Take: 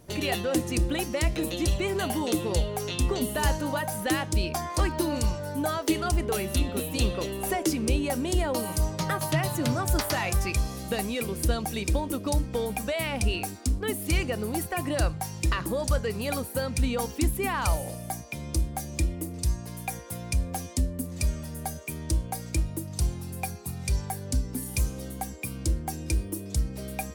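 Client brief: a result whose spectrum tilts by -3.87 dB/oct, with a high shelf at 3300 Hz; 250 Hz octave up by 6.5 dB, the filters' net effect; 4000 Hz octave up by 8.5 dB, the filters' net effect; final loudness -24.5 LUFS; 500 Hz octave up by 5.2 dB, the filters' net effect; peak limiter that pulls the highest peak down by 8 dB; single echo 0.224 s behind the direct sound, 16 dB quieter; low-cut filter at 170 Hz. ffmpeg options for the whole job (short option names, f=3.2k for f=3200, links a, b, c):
-af "highpass=170,equalizer=f=250:t=o:g=8,equalizer=f=500:t=o:g=4,highshelf=f=3.3k:g=4.5,equalizer=f=4k:t=o:g=7.5,alimiter=limit=-14dB:level=0:latency=1,aecho=1:1:224:0.158,volume=1.5dB"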